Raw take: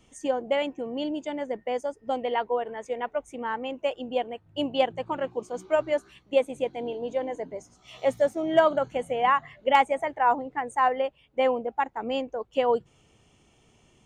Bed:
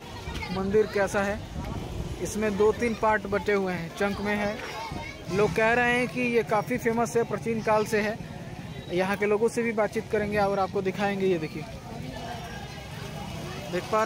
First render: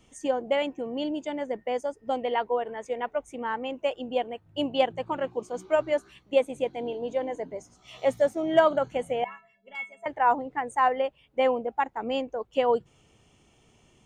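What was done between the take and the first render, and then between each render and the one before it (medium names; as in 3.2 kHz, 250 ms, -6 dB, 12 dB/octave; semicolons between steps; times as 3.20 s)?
9.24–10.06 s: inharmonic resonator 200 Hz, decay 0.49 s, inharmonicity 0.03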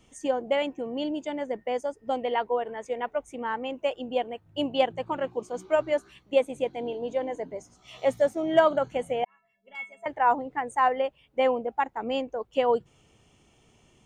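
9.25–9.93 s: fade in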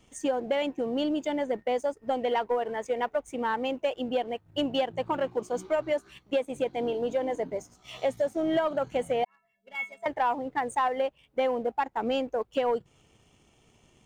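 compression 6:1, threshold -26 dBFS, peak gain reduction 12 dB; waveshaping leveller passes 1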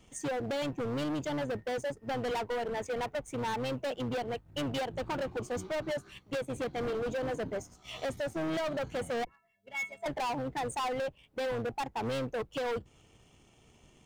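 octave divider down 1 oct, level -4 dB; hard clipper -31 dBFS, distortion -7 dB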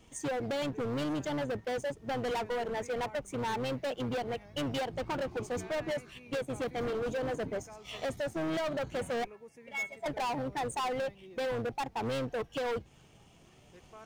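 add bed -27.5 dB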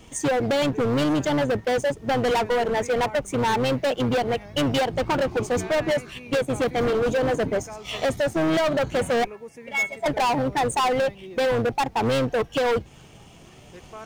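trim +11.5 dB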